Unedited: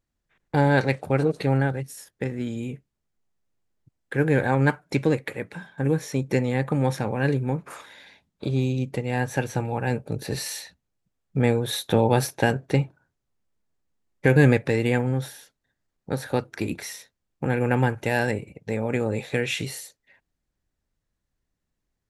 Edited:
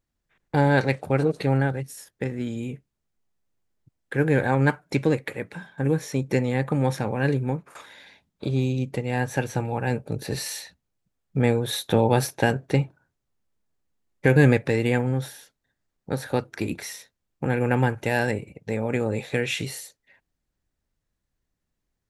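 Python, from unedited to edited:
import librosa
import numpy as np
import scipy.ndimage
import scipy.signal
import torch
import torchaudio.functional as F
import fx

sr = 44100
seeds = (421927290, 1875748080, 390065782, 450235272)

y = fx.edit(x, sr, fx.fade_out_to(start_s=7.5, length_s=0.25, floor_db=-15.5), tone=tone)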